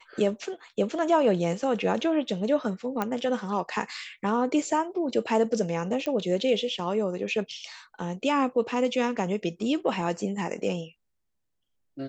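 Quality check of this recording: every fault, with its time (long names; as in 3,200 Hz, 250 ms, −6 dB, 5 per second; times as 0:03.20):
0:03.02: click −14 dBFS
0:06.06: click −18 dBFS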